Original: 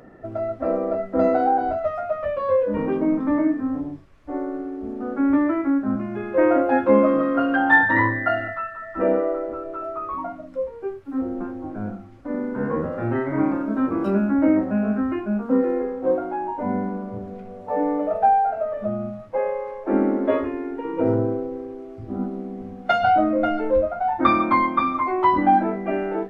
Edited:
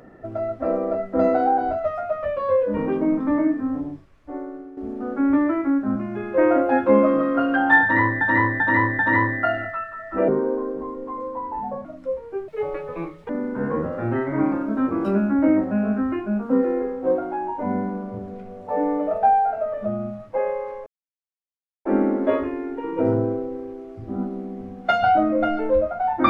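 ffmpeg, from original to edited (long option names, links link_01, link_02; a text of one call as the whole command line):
ffmpeg -i in.wav -filter_complex "[0:a]asplit=10[link_01][link_02][link_03][link_04][link_05][link_06][link_07][link_08][link_09][link_10];[link_01]atrim=end=4.77,asetpts=PTS-STARTPTS,afade=type=out:start_time=3.9:duration=0.87:silence=0.298538[link_11];[link_02]atrim=start=4.77:end=8.212,asetpts=PTS-STARTPTS,afade=type=in:duration=0.004:curve=hsin:silence=0.298538[link_12];[link_03]atrim=start=7.818:end=8.212[link_13];[link_04]atrim=start=7.818:end=8.212[link_14];[link_05]atrim=start=7.818:end=9.114[link_15];[link_06]atrim=start=9.11:end=10.35,asetpts=PTS-STARTPTS,asetrate=34839,aresample=44100,atrim=end_sample=69220,asetpts=PTS-STARTPTS[link_16];[link_07]atrim=start=10.346:end=10.984[link_17];[link_08]atrim=start=10.98:end=12.29,asetpts=PTS-STARTPTS,asetrate=71001,aresample=44100[link_18];[link_09]atrim=start=12.286:end=19.86,asetpts=PTS-STARTPTS,afade=type=out:start_time=7.57:duration=0.004:curve=hsin,apad=pad_dur=0.99[link_19];[link_10]atrim=start=19.86,asetpts=PTS-STARTPTS,afade=type=in:duration=0.004:curve=hsin[link_20];[link_11][link_12]concat=n=2:v=0:a=1[link_21];[link_21][link_13]acrossfade=duration=0.004:curve1=hsin:curve2=hsin[link_22];[link_22][link_14]acrossfade=duration=0.004:curve1=hsin:curve2=hsin[link_23];[link_23][link_15]acrossfade=duration=0.004:curve1=hsin:curve2=hsin[link_24];[link_24][link_16]acrossfade=duration=0.004:curve1=hsin:curve2=hsin[link_25];[link_25][link_17]acrossfade=duration=0.004:curve1=hsin:curve2=hsin[link_26];[link_26][link_18]acrossfade=duration=0.004:curve1=hsin:curve2=hsin[link_27];[link_19][link_20]concat=n=2:v=0:a=1[link_28];[link_27][link_28]acrossfade=duration=0.004:curve1=hsin:curve2=hsin" out.wav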